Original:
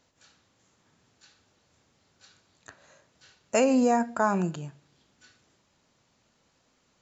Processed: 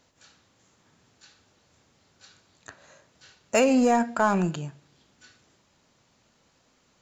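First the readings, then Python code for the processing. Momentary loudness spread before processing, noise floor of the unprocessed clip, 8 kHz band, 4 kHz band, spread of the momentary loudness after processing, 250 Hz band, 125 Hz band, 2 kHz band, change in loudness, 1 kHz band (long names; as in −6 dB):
16 LU, −70 dBFS, can't be measured, +4.5 dB, 14 LU, +2.0 dB, +3.0 dB, +4.0 dB, +2.0 dB, +2.0 dB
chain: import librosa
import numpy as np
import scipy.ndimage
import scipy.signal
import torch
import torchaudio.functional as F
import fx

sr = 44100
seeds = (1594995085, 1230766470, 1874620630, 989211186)

p1 = fx.dynamic_eq(x, sr, hz=2700.0, q=0.83, threshold_db=-47.0, ratio=4.0, max_db=4)
p2 = np.clip(p1, -10.0 ** (-27.5 / 20.0), 10.0 ** (-27.5 / 20.0))
y = p1 + F.gain(torch.from_numpy(p2), -6.0).numpy()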